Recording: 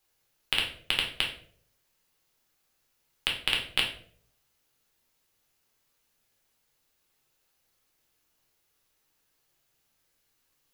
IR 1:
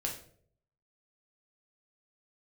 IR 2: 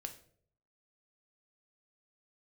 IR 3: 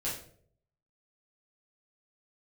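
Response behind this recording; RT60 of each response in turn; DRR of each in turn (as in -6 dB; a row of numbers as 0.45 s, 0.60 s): 1; 0.60 s, 0.60 s, 0.60 s; -1.0 dB, 5.5 dB, -8.5 dB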